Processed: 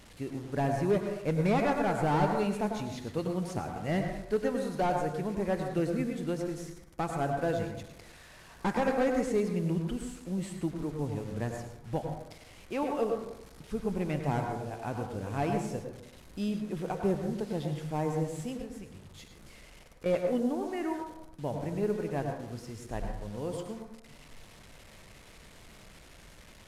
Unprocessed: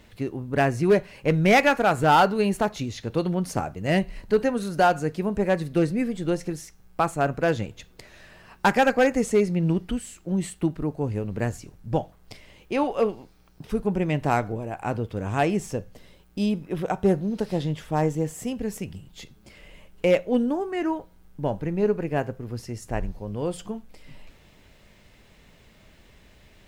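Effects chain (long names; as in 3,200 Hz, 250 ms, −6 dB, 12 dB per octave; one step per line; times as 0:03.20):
linear delta modulator 64 kbit/s, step −39.5 dBFS
0:18.62–0:20.06: downward compressor 4 to 1, threshold −35 dBFS, peak gain reduction 12.5 dB
on a send: convolution reverb RT60 0.80 s, pre-delay 92 ms, DRR 3.5 dB
on the sum: level −8.5 dB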